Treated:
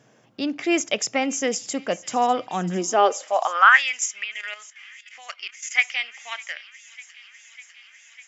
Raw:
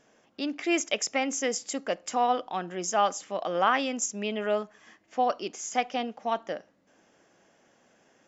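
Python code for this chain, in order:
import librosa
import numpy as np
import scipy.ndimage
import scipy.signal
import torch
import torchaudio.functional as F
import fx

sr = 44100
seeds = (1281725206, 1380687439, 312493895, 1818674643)

y = fx.echo_wet_highpass(x, sr, ms=600, feedback_pct=77, hz=2400.0, wet_db=-17.0)
y = fx.filter_sweep_highpass(y, sr, from_hz=120.0, to_hz=2100.0, start_s=2.51, end_s=3.84, q=5.4)
y = fx.level_steps(y, sr, step_db=12, at=(4.24, 5.71))
y = y * 10.0 ** (4.0 / 20.0)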